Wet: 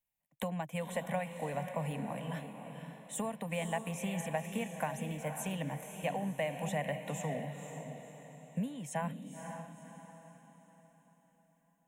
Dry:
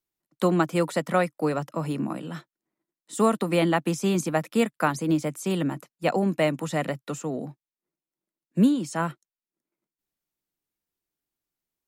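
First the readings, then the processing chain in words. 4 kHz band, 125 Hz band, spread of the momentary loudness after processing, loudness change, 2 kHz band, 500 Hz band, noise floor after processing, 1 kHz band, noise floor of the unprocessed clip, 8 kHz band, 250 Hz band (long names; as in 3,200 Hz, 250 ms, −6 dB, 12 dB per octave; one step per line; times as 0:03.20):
−11.0 dB, −9.0 dB, 12 LU, −12.5 dB, −10.0 dB, −12.0 dB, −72 dBFS, −10.0 dB, below −85 dBFS, −7.0 dB, −14.0 dB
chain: downward compressor, threshold −29 dBFS, peak gain reduction 13.5 dB
phaser with its sweep stopped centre 1,300 Hz, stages 6
feedback delay with all-pass diffusion 516 ms, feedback 44%, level −7 dB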